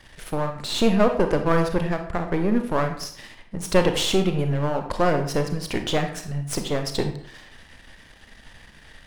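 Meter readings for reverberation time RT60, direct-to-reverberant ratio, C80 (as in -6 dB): 0.60 s, 5.5 dB, 12.0 dB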